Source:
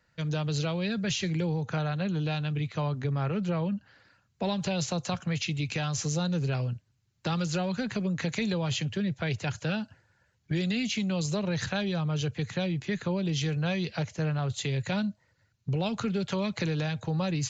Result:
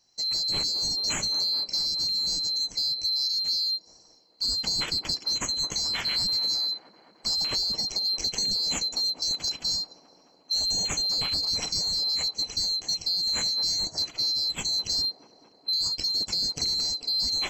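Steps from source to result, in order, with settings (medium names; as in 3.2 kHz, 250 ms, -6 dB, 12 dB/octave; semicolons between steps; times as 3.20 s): split-band scrambler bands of 4 kHz; bass shelf 330 Hz +5.5 dB; in parallel at -9.5 dB: saturation -29 dBFS, distortion -13 dB; on the sum: feedback echo behind a band-pass 216 ms, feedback 74%, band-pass 550 Hz, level -8 dB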